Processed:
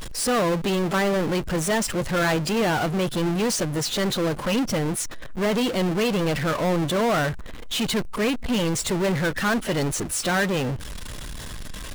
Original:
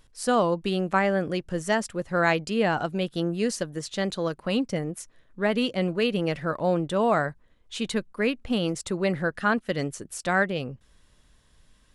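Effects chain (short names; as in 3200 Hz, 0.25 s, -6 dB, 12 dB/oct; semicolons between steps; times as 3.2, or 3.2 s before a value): bin magnitudes rounded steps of 15 dB; power-law curve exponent 0.35; gain -6 dB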